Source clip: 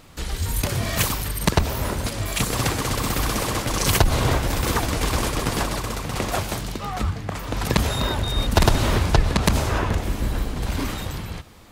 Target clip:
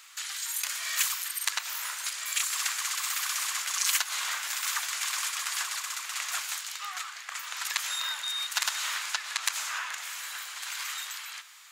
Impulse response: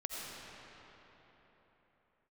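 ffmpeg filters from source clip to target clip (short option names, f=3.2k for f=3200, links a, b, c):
-filter_complex "[0:a]highpass=f=1.3k:w=0.5412,highpass=f=1.3k:w=1.3066,equalizer=f=7k:w=3.6:g=6.5,asplit=2[a][b];[b]acompressor=threshold=-37dB:ratio=6,volume=3dB[c];[a][c]amix=inputs=2:normalize=0,flanger=delay=8.8:depth=4.3:regen=-85:speed=0.55:shape=sinusoidal,volume=-1.5dB"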